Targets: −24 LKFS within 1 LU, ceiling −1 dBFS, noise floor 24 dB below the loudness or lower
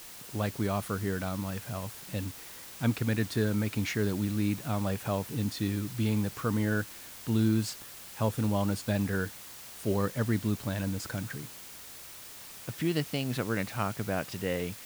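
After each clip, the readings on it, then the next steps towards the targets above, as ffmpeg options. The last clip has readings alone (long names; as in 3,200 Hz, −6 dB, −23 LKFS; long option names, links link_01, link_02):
background noise floor −47 dBFS; target noise floor −56 dBFS; integrated loudness −32.0 LKFS; sample peak −14.5 dBFS; target loudness −24.0 LKFS
→ -af "afftdn=noise_reduction=9:noise_floor=-47"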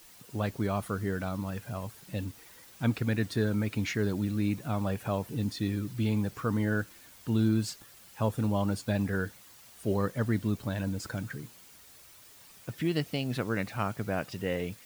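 background noise floor −54 dBFS; target noise floor −56 dBFS
→ -af "afftdn=noise_reduction=6:noise_floor=-54"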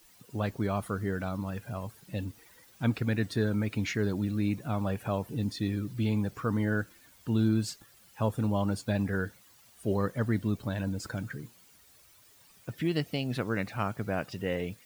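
background noise floor −59 dBFS; integrated loudness −32.0 LKFS; sample peak −15.0 dBFS; target loudness −24.0 LKFS
→ -af "volume=8dB"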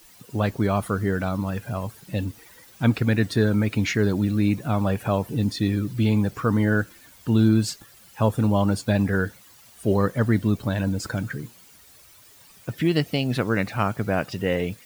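integrated loudness −24.0 LKFS; sample peak −7.0 dBFS; background noise floor −51 dBFS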